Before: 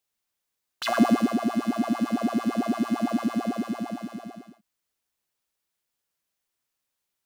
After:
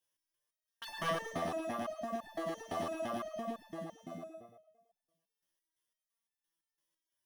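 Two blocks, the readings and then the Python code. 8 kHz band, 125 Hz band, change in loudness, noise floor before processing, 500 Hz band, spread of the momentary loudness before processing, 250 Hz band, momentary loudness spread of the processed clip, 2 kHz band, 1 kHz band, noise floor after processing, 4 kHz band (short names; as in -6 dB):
-9.5 dB, -12.0 dB, -13.5 dB, -83 dBFS, -6.5 dB, 13 LU, -20.5 dB, 12 LU, -9.0 dB, -9.0 dB, under -85 dBFS, -9.5 dB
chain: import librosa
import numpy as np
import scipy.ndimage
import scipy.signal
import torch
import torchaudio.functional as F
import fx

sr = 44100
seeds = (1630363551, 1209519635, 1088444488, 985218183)

p1 = 10.0 ** (-22.5 / 20.0) * (np.abs((x / 10.0 ** (-22.5 / 20.0) + 3.0) % 4.0 - 2.0) - 1.0)
p2 = fx.ripple_eq(p1, sr, per_octave=1.2, db=9)
p3 = fx.dereverb_blind(p2, sr, rt60_s=0.86)
p4 = p3 + fx.echo_feedback(p3, sr, ms=110, feedback_pct=59, wet_db=-5.5, dry=0)
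p5 = fx.resonator_held(p4, sr, hz=5.9, low_hz=84.0, high_hz=880.0)
y = p5 * librosa.db_to_amplitude(4.5)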